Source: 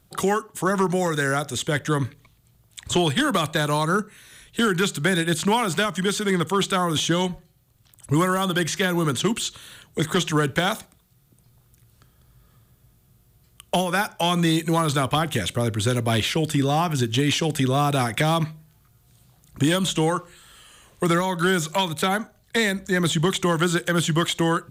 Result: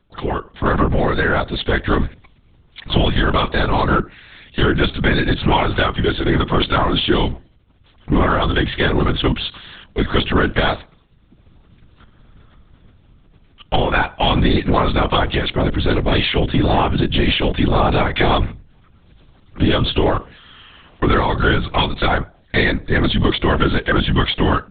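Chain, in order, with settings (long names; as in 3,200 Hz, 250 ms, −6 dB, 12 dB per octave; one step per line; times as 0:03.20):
automatic gain control gain up to 11.5 dB
in parallel at −3.5 dB: hard clipping −15 dBFS, distortion −7 dB
on the sum: linear-prediction vocoder at 8 kHz whisper
level −6 dB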